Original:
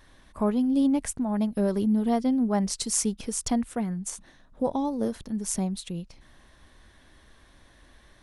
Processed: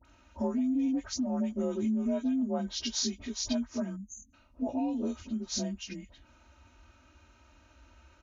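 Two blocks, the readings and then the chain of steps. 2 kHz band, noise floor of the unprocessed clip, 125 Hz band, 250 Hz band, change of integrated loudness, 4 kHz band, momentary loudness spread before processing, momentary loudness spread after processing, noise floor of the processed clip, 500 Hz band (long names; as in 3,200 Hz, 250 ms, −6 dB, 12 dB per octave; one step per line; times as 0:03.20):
−4.5 dB, −57 dBFS, −8.5 dB, −5.5 dB, −5.5 dB, +2.0 dB, 10 LU, 9 LU, −62 dBFS, −6.5 dB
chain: partials spread apart or drawn together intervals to 88%
high-pass filter 54 Hz
parametric band 340 Hz −3 dB 0.31 octaves
comb filter 3.2 ms, depth 98%
all-pass dispersion highs, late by 51 ms, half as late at 1,500 Hz
time-frequency box erased 0:03.97–0:04.34, 290–6,100 Hz
downward compressor, threshold −23 dBFS, peak gain reduction 7 dB
parametric band 70 Hz +5.5 dB 1.8 octaves
level −4.5 dB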